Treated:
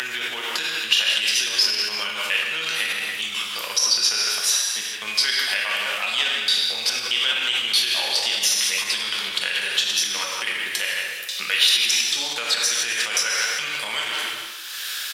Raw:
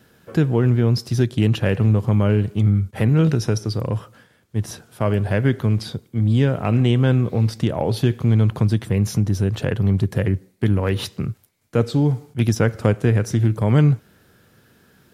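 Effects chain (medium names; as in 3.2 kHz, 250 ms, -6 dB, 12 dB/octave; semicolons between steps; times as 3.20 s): slices played last to first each 209 ms, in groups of 4; speakerphone echo 160 ms, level -7 dB; gated-style reverb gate 450 ms falling, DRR -2 dB; upward compressor, threshold -29 dBFS; treble shelf 2.7 kHz +11.5 dB; peak limiter -11.5 dBFS, peak gain reduction 11 dB; high-pass 1.2 kHz 12 dB/octave; peaking EQ 3.5 kHz +11 dB 1.7 oct; three bands compressed up and down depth 40%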